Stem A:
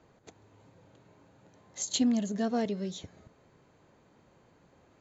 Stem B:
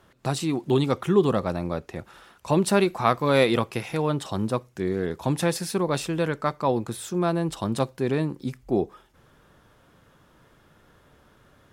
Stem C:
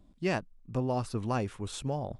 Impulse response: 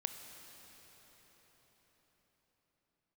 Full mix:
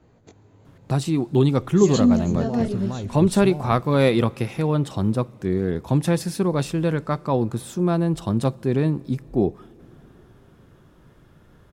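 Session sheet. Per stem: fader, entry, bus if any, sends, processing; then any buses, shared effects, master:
+1.0 dB, 0.00 s, send -9.5 dB, chorus 0.94 Hz, delay 16.5 ms, depth 5.5 ms
-3.0 dB, 0.65 s, send -17 dB, none
+0.5 dB, 1.60 s, no send, compression 4:1, threshold -34 dBFS, peak gain reduction 8.5 dB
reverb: on, RT60 5.5 s, pre-delay 21 ms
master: bass shelf 320 Hz +10.5 dB

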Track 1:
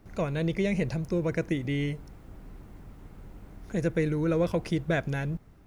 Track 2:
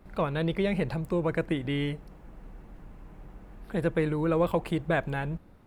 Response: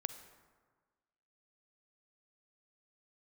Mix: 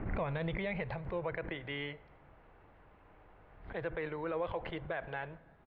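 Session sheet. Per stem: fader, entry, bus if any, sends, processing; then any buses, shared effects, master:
-1.5 dB, 0.00 s, send -17.5 dB, inverse Chebyshev low-pass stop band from 4.6 kHz, stop band 40 dB; swell ahead of each attack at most 70 dB/s; auto duck -20 dB, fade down 1.80 s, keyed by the second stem
-6.0 dB, 0.9 ms, polarity flipped, send -9.5 dB, high-pass 450 Hz 6 dB/octave; low-pass 3.4 kHz 24 dB/octave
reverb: on, RT60 1.5 s, pre-delay 38 ms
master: peak limiter -27 dBFS, peak gain reduction 9 dB

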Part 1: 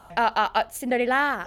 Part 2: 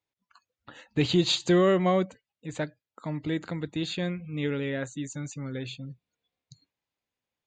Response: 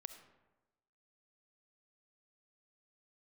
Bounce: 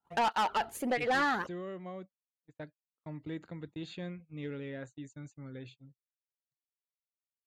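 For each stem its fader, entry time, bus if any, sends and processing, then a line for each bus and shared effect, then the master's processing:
+1.5 dB, 0.00 s, no send, cancelling through-zero flanger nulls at 1.5 Hz, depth 1.9 ms
2.08 s -19.5 dB -> 2.88 s -10 dB, 0.00 s, no send, none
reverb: none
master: gate -47 dBFS, range -38 dB; treble shelf 3.6 kHz -7.5 dB; saturation -24.5 dBFS, distortion -8 dB

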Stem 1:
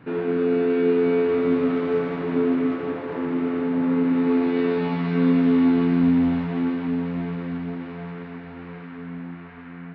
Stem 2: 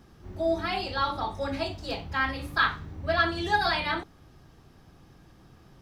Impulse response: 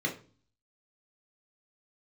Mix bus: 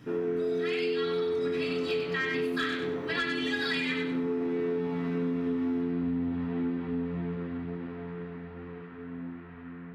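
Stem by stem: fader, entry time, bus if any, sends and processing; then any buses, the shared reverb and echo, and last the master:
-7.0 dB, 0.00 s, send -12 dB, no echo send, bass shelf 340 Hz +3 dB
+0.5 dB, 0.00 s, send -10.5 dB, echo send -6 dB, resonant high-pass 2.2 kHz, resonance Q 3.1; band-stop 4.7 kHz, Q 27; saturation -16.5 dBFS, distortion -19 dB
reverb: on, RT60 0.40 s, pre-delay 3 ms
echo: feedback delay 97 ms, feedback 29%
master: compression, threshold -27 dBFS, peak gain reduction 9 dB

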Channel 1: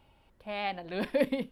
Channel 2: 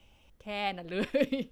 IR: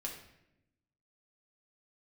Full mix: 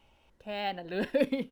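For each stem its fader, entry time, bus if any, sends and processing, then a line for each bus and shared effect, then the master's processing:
-1.5 dB, 0.00 s, no send, bass shelf 160 Hz -11.5 dB
-5.5 dB, 0.9 ms, polarity flipped, no send, none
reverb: none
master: decimation joined by straight lines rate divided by 2×

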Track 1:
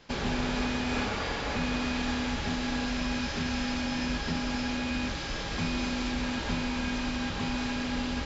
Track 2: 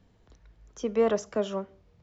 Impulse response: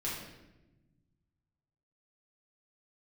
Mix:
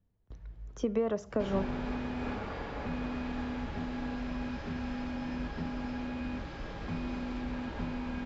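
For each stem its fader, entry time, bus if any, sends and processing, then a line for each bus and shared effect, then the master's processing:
-4.5 dB, 1.30 s, no send, treble shelf 2.3 kHz -10.5 dB
+1.5 dB, 0.00 s, no send, compression 6:1, threshold -30 dBFS, peak gain reduction 11.5 dB; bass shelf 180 Hz +9.5 dB; gate with hold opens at -44 dBFS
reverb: none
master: treble shelf 4.2 kHz -10 dB

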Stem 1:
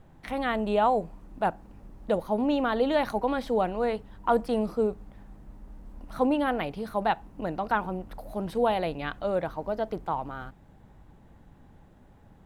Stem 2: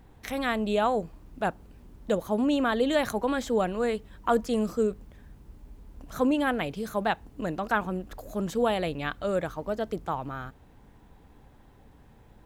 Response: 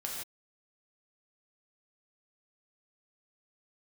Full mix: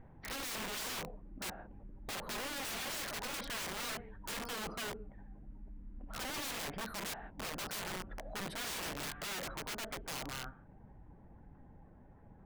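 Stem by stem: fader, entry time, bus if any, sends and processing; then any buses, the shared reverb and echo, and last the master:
-3.5 dB, 0.00 s, no send, spectral gate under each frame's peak -25 dB strong; peak limiter -21 dBFS, peak gain reduction 9 dB
0.0 dB, 0.00 s, polarity flipped, send -16.5 dB, four-pole ladder low-pass 2.4 kHz, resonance 35%; auto duck -10 dB, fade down 0.30 s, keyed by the first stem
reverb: on, pre-delay 3 ms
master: treble shelf 9 kHz +6.5 dB; integer overflow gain 35.5 dB

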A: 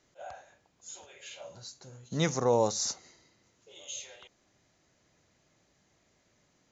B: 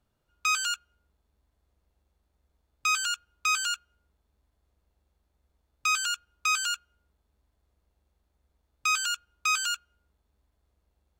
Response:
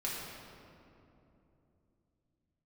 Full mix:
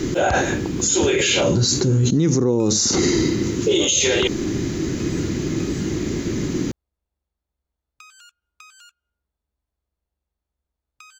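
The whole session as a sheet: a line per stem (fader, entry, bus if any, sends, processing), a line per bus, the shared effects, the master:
-3.5 dB, 0.00 s, no send, resonant low shelf 470 Hz +10.5 dB, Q 3; level flattener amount 100%
-10.0 dB, 2.15 s, no send, compression 12:1, threshold -34 dBFS, peak gain reduction 12.5 dB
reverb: none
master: peak limiter -9 dBFS, peak gain reduction 5.5 dB

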